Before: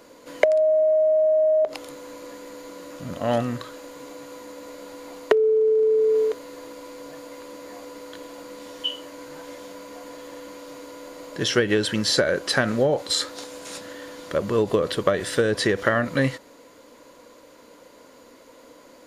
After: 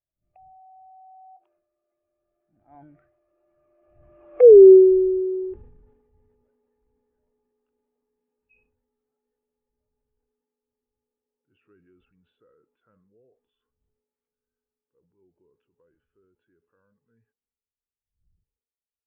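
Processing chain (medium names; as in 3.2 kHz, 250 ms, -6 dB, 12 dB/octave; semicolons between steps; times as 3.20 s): wind noise 89 Hz -39 dBFS; Doppler pass-by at 4.51 s, 59 m/s, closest 5.1 m; steep low-pass 2.9 kHz; transient shaper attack -3 dB, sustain +7 dB; loudness maximiser +19.5 dB; spectral contrast expander 1.5:1; trim -2.5 dB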